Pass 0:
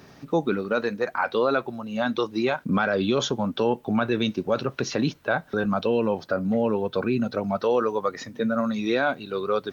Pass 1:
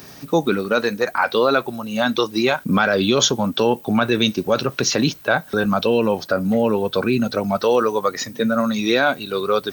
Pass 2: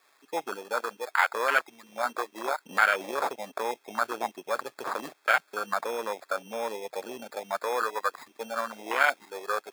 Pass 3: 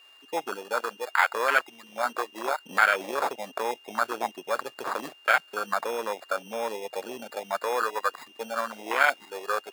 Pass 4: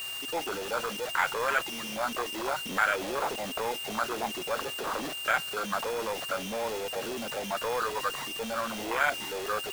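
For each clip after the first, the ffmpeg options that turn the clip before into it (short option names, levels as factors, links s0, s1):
-af "aemphasis=mode=production:type=75kf,volume=1.78"
-af "acrusher=samples=15:mix=1:aa=0.000001,afwtdn=0.1,highpass=1100"
-af "aeval=exprs='val(0)+0.002*sin(2*PI*2800*n/s)':c=same,volume=1.19"
-af "aeval=exprs='val(0)+0.5*0.0562*sgn(val(0))':c=same,volume=0.473"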